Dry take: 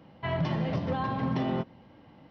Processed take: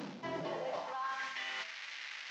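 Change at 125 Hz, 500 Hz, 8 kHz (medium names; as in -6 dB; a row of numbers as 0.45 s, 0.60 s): -24.0 dB, -7.5 dB, no reading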